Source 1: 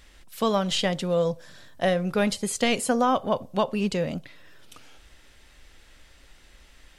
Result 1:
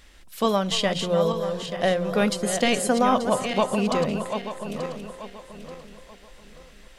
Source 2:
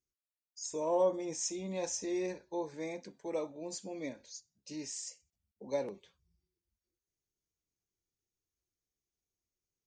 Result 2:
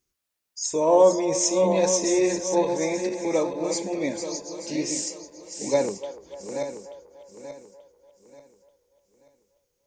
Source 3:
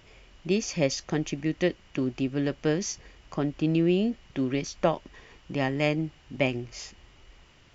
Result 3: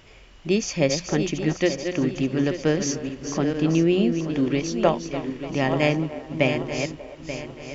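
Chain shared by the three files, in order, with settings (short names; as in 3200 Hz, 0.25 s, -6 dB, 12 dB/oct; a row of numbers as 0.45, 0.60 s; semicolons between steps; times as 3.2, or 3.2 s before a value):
regenerating reverse delay 0.442 s, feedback 56%, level -7 dB; notches 60/120/180 Hz; band-limited delay 0.294 s, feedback 51%, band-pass 790 Hz, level -13 dB; match loudness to -24 LUFS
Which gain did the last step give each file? +1.0, +12.5, +4.0 dB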